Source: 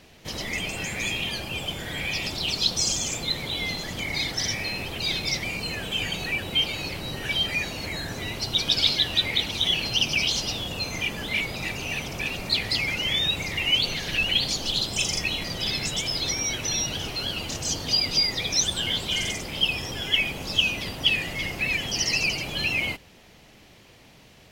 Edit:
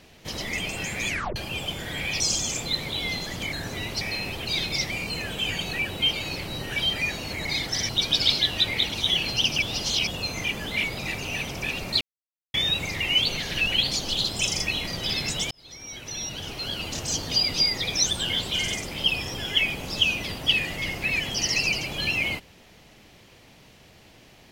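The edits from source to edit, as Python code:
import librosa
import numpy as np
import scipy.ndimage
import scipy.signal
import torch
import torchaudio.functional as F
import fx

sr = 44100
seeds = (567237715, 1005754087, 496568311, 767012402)

y = fx.edit(x, sr, fx.tape_stop(start_s=1.08, length_s=0.28),
    fx.cut(start_s=2.2, length_s=0.57),
    fx.swap(start_s=4.1, length_s=0.44, other_s=7.98, other_length_s=0.48),
    fx.reverse_span(start_s=10.19, length_s=0.45),
    fx.silence(start_s=12.58, length_s=0.53),
    fx.fade_in_span(start_s=16.08, length_s=1.47), tone=tone)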